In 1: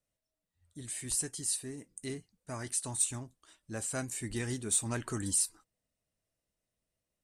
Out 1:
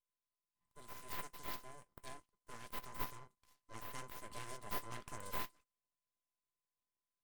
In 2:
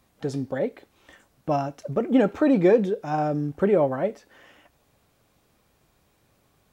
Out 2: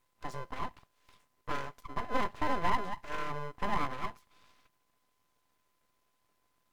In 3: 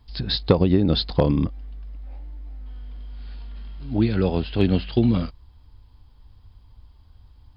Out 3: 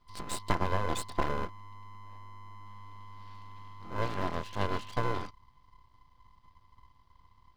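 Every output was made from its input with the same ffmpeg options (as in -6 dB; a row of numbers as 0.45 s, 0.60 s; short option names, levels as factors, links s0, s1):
-af "equalizer=f=92:t=o:w=0.57:g=-10.5,aeval=exprs='val(0)*sin(2*PI*510*n/s)':c=same,aeval=exprs='abs(val(0))':c=same,volume=0.473"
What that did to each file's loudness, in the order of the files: -14.0 LU, -13.0 LU, -13.0 LU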